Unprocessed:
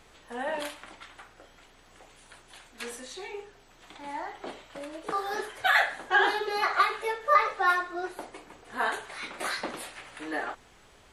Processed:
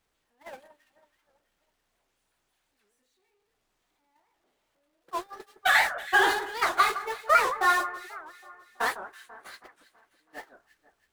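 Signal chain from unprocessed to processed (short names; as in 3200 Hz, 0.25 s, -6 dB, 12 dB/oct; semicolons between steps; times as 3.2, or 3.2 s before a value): zero-crossing step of -30 dBFS; gate -25 dBFS, range -42 dB; dynamic EQ 8800 Hz, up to +5 dB, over -45 dBFS, Q 0.86; on a send: echo with dull and thin repeats by turns 0.163 s, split 1800 Hz, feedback 65%, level -12.5 dB; on the sum: record warp 78 rpm, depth 250 cents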